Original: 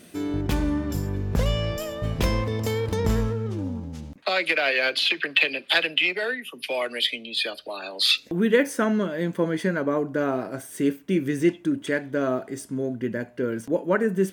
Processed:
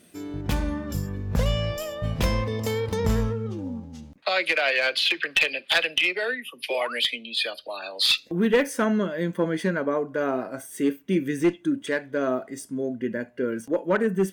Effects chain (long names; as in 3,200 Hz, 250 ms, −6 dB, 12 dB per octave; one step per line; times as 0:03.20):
sound drawn into the spectrogram rise, 0:06.70–0:07.04, 340–3,100 Hz −34 dBFS
asymmetric clip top −15 dBFS
noise reduction from a noise print of the clip's start 7 dB